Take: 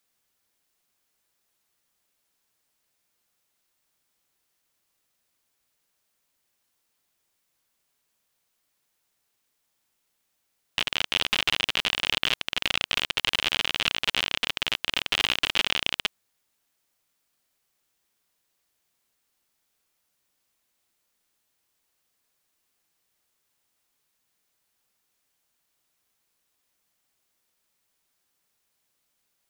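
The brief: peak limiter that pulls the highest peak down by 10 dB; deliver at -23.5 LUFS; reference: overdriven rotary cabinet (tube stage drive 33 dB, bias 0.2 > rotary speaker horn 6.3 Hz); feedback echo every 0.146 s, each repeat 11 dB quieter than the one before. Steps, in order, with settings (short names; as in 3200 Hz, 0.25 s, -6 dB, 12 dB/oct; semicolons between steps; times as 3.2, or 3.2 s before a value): limiter -11.5 dBFS; feedback echo 0.146 s, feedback 28%, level -11 dB; tube stage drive 33 dB, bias 0.2; rotary speaker horn 6.3 Hz; gain +20.5 dB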